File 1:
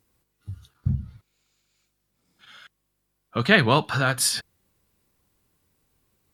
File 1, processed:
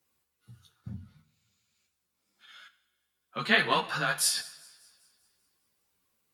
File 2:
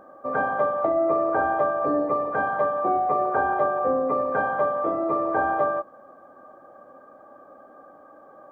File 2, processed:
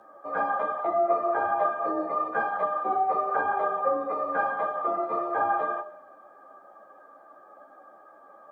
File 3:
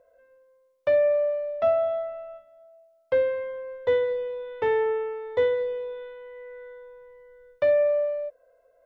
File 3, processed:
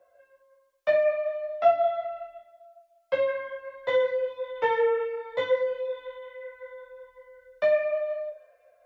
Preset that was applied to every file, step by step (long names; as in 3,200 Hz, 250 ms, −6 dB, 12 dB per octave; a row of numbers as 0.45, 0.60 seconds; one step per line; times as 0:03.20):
low-shelf EQ 430 Hz −11.5 dB
delay with a high-pass on its return 197 ms, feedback 54%, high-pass 2,000 Hz, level −23.5 dB
frequency shifter +22 Hz
coupled-rooms reverb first 0.54 s, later 1.7 s, from −17 dB, DRR 9.5 dB
string-ensemble chorus
loudness normalisation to −27 LKFS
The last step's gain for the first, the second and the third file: −1.0, +3.5, +6.5 decibels